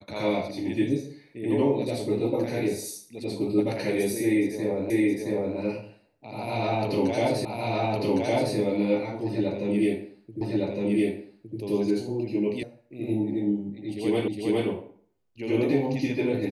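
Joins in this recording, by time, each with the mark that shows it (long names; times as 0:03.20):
0:04.90: the same again, the last 0.67 s
0:07.45: the same again, the last 1.11 s
0:10.41: the same again, the last 1.16 s
0:12.63: cut off before it has died away
0:14.28: the same again, the last 0.41 s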